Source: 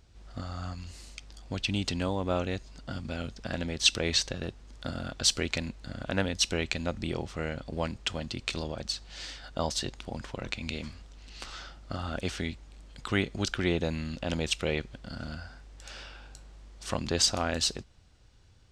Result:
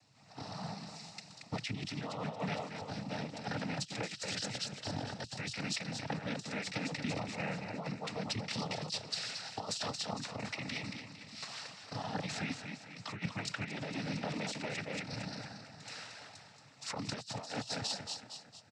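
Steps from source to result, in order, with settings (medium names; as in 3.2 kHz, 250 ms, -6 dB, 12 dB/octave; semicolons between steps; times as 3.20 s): bass shelf 150 Hz -4.5 dB; static phaser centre 2 kHz, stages 8; feedback delay 228 ms, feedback 46%, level -7.5 dB; compressor with a negative ratio -36 dBFS, ratio -0.5; noise-vocoded speech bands 12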